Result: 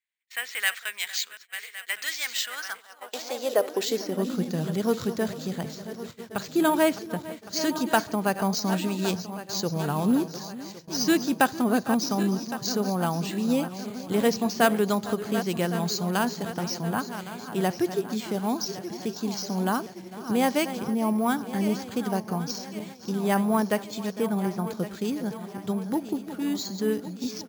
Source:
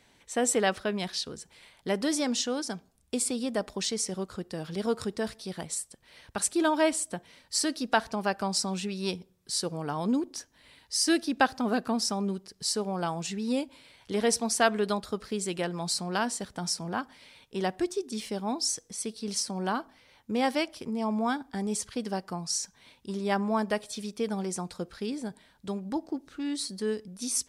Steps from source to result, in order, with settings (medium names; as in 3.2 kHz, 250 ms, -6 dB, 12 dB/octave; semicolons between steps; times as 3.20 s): backward echo that repeats 556 ms, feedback 69%, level -12 dB; in parallel at -8.5 dB: one-sided clip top -24.5 dBFS; 24.14–24.77 s: on the sum: treble shelf 5.5 kHz -8.5 dB; echo from a far wall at 78 m, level -17 dB; high-pass sweep 2 kHz -> 120 Hz, 2.39–4.78 s; gate -39 dBFS, range -34 dB; careless resampling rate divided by 4×, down filtered, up hold